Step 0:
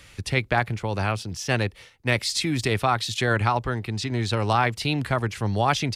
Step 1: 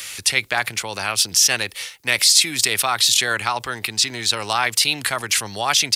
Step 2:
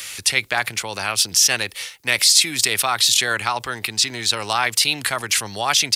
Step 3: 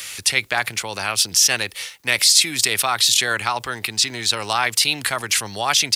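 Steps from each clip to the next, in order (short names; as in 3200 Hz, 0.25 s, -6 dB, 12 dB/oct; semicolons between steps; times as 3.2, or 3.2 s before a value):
in parallel at -2 dB: negative-ratio compressor -35 dBFS, ratio -1; on the sum: tilt +4.5 dB/oct
nothing audible
requantised 10-bit, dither none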